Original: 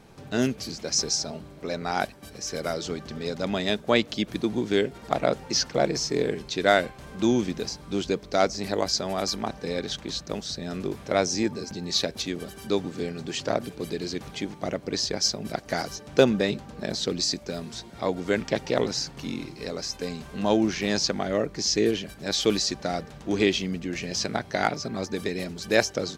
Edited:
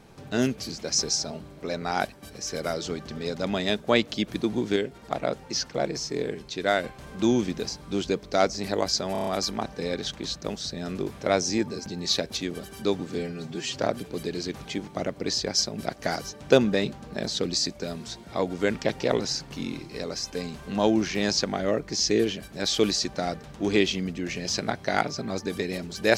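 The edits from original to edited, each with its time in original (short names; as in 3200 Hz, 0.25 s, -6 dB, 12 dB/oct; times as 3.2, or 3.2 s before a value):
4.76–6.84 gain -4 dB
9.12 stutter 0.03 s, 6 plays
13.04–13.41 stretch 1.5×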